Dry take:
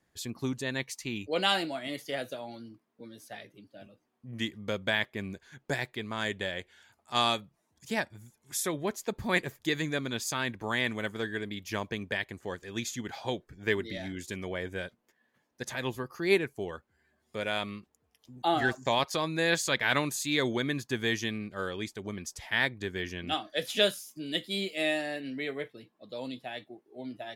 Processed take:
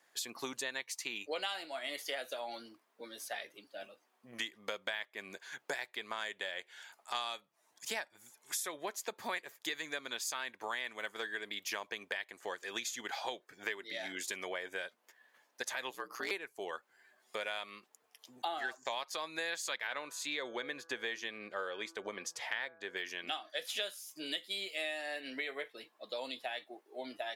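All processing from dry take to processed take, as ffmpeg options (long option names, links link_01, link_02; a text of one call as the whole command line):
ffmpeg -i in.wav -filter_complex "[0:a]asettb=1/sr,asplit=3[link_01][link_02][link_03];[link_01]atrim=end=15.904[link_04];[link_02]atrim=start=15.9:end=16.31,asetpts=PTS-STARTPTS,afade=type=in:duration=0.004:curve=qsin,afade=type=out:start_time=0.406:duration=0.004:curve=qsin,bandreject=frequency=50:width_type=h:width=6,bandreject=frequency=100:width_type=h:width=6,bandreject=frequency=150:width_type=h:width=6,bandreject=frequency=200:width_type=h:width=6,bandreject=frequency=250:width_type=h:width=6,bandreject=frequency=300:width_type=h:width=6,bandreject=frequency=350:width_type=h:width=6,bandreject=frequency=400:width_type=h:width=6,asoftclip=type=hard:threshold=-26dB,aeval=exprs='val(0)*sin(2*PI*61*n/s)':channel_layout=same[link_05];[link_03]atrim=start=16.306[link_06];[link_04][link_05]acrossfade=duration=0.004:curve1=hsin:curve2=qsin[link_07];[link_07][link_06]acrossfade=duration=0.004:curve1=qsin:curve2=hsin,asettb=1/sr,asplit=3[link_08][link_09][link_10];[link_08]atrim=end=19.874[link_11];[link_09]atrim=start=19.87:end=22.97,asetpts=PTS-STARTPTS,afade=type=in:duration=0.004:curve=qsin,afade=type=out:start_time=3.096:duration=0.004:curve=qsin,lowpass=frequency=3000:poles=1,equalizer=frequency=510:width=4.9:gain=6.5,bandreject=frequency=165.1:width_type=h:width=4,bandreject=frequency=330.2:width_type=h:width=4,bandreject=frequency=495.3:width_type=h:width=4,bandreject=frequency=660.4:width_type=h:width=4,bandreject=frequency=825.5:width_type=h:width=4,bandreject=frequency=990.6:width_type=h:width=4,bandreject=frequency=1155.7:width_type=h:width=4,bandreject=frequency=1320.8:width_type=h:width=4,bandreject=frequency=1485.9:width_type=h:width=4,bandreject=frequency=1651:width_type=h:width=4[link_12];[link_10]atrim=start=22.966[link_13];[link_11][link_12]acrossfade=duration=0.004:curve1=hsin:curve2=qsin[link_14];[link_14][link_13]acrossfade=duration=0.004:curve1=qsin:curve2=hsin,highpass=640,acompressor=threshold=-44dB:ratio=6,volume=7.5dB" out.wav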